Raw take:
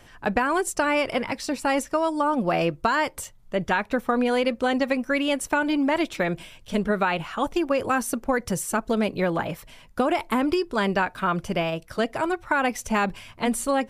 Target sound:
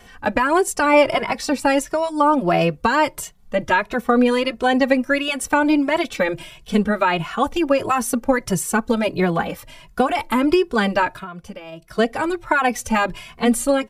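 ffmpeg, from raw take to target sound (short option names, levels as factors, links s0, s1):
-filter_complex "[0:a]asettb=1/sr,asplit=3[s0][s1][s2];[s0]atrim=end=0.934[s3];[s1]atrim=start=0.93:end=1.53,asetpts=PTS-STARTPTS,afade=t=in:d=0.004:c=qsin,afade=t=out:st=0.596:d=0.004:c=qsin,equalizer=f=800:w=0.89:g=5[s4];[s2]atrim=start=1.526[s5];[s3][s4]acrossfade=d=0.004:c1=hsin:c2=qsin[s6];[s6][s5]acrossfade=d=0.004:c1=qsin:c2=hsin,asplit=3[s7][s8][s9];[s7]afade=t=out:st=11.17:d=0.02[s10];[s8]acompressor=threshold=0.0158:ratio=20,afade=t=in:st=11.17:d=0.02,afade=t=out:st=11.97:d=0.02[s11];[s9]afade=t=in:st=11.97:d=0.02[s12];[s10][s11][s12]amix=inputs=3:normalize=0,asplit=2[s13][s14];[s14]adelay=2.3,afreqshift=1.5[s15];[s13][s15]amix=inputs=2:normalize=1,volume=2.51"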